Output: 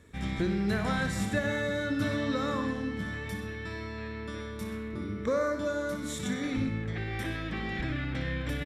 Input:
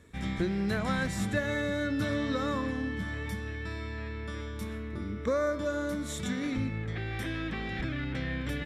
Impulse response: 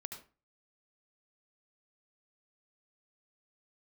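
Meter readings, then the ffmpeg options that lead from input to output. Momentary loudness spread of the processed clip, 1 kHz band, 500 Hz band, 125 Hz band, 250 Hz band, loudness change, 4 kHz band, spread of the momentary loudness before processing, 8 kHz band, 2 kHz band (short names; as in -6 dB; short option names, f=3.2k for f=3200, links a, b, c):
9 LU, +1.0 dB, +0.5 dB, 0.0 dB, +0.5 dB, +0.5 dB, +1.0 dB, 8 LU, +0.5 dB, +0.5 dB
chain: -filter_complex "[0:a]aecho=1:1:128:0.168,asplit=2[a][b];[1:a]atrim=start_sample=2205,asetrate=88200,aresample=44100,adelay=60[c];[b][c]afir=irnorm=-1:irlink=0,volume=1.5dB[d];[a][d]amix=inputs=2:normalize=0"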